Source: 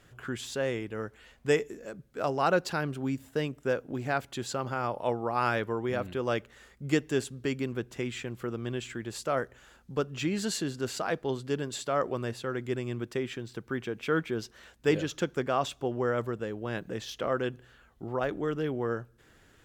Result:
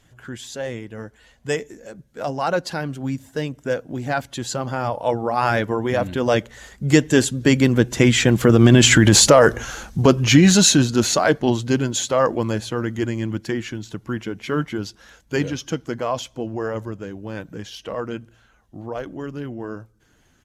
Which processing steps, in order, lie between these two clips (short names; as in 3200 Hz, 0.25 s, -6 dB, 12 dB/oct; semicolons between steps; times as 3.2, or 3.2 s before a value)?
bin magnitudes rounded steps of 15 dB; Doppler pass-by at 8.75, 13 m/s, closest 3.9 m; downsampling 32000 Hz; wide varispeed 0.961×; thirty-one-band EQ 400 Hz -6 dB, 1250 Hz -6 dB, 2500 Hz -4 dB, 6300 Hz +4 dB; maximiser +33.5 dB; gain -1 dB